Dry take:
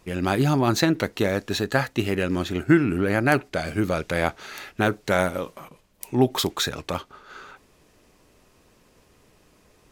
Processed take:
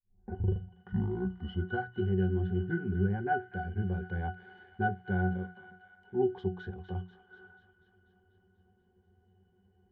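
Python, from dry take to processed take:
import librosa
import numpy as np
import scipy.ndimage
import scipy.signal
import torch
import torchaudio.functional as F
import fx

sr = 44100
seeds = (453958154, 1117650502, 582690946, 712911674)

p1 = fx.tape_start_head(x, sr, length_s=1.96)
p2 = scipy.signal.sosfilt(scipy.signal.butter(2, 6100.0, 'lowpass', fs=sr, output='sos'), p1)
p3 = fx.bass_treble(p2, sr, bass_db=3, treble_db=-13)
p4 = fx.hum_notches(p3, sr, base_hz=60, count=3)
p5 = fx.octave_resonator(p4, sr, note='F#', decay_s=0.19)
p6 = p5 + fx.echo_wet_highpass(p5, sr, ms=244, feedback_pct=65, hz=1400.0, wet_db=-10.5, dry=0)
y = p6 * librosa.db_to_amplitude(1.0)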